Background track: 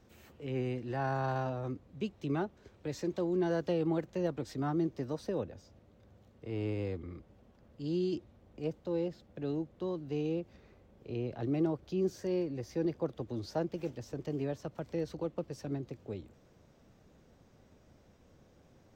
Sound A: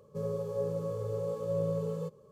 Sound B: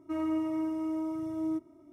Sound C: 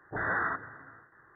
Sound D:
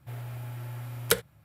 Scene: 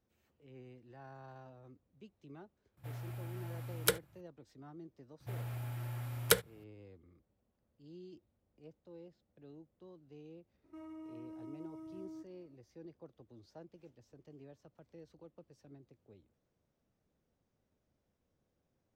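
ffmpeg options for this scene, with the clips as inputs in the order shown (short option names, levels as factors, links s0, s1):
-filter_complex "[4:a]asplit=2[s0][s1];[0:a]volume=0.106[s2];[2:a]alimiter=level_in=2.37:limit=0.0631:level=0:latency=1:release=71,volume=0.422[s3];[s0]atrim=end=1.44,asetpts=PTS-STARTPTS,volume=0.501,afade=t=in:d=0.004:c=hsin,afade=t=out:st=1.436:d=0.004:c=hsin,adelay=2770[s4];[s1]atrim=end=1.44,asetpts=PTS-STARTPTS,volume=0.708,afade=t=in:d=0.004:c=hsin,afade=t=out:st=1.436:d=0.004:c=hsin,adelay=5200[s5];[s3]atrim=end=1.92,asetpts=PTS-STARTPTS,volume=0.251,afade=t=in:d=0.004:c=hsin,afade=t=out:st=1.916:d=0.004:c=hsin,adelay=10640[s6];[s2][s4][s5][s6]amix=inputs=4:normalize=0"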